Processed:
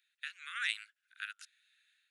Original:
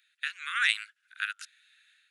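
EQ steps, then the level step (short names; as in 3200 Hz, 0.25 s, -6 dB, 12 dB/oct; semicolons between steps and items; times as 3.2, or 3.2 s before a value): HPF 1300 Hz 6 dB/oct; -8.0 dB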